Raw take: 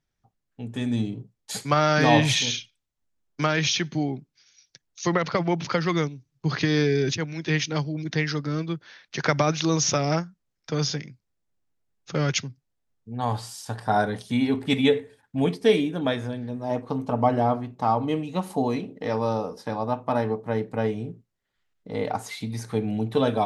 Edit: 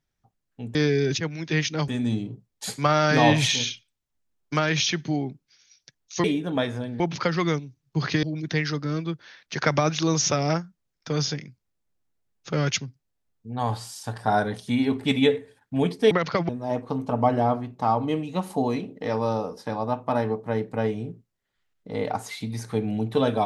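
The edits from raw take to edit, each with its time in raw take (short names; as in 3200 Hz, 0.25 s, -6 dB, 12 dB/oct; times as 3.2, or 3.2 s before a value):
5.11–5.49 swap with 15.73–16.49
6.72–7.85 move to 0.75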